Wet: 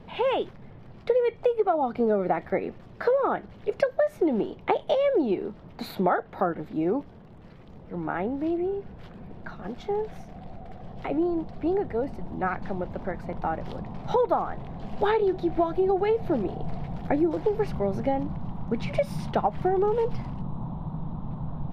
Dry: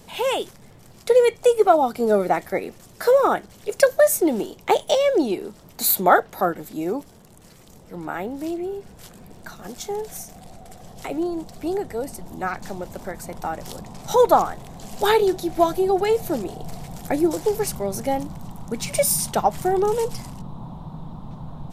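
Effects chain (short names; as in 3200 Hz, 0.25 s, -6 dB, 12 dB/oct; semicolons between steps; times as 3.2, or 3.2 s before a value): air absorption 350 m; compressor 6:1, threshold -21 dBFS, peak gain reduction 10.5 dB; tone controls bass +2 dB, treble -3 dB; gain +1 dB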